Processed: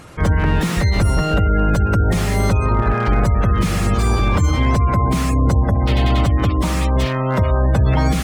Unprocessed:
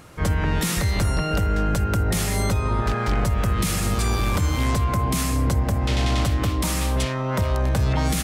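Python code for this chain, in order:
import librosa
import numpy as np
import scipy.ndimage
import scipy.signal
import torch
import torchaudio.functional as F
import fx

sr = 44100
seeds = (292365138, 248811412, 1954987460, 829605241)

y = fx.spec_gate(x, sr, threshold_db=-30, keep='strong')
y = fx.slew_limit(y, sr, full_power_hz=91.0)
y = y * 10.0 ** (6.0 / 20.0)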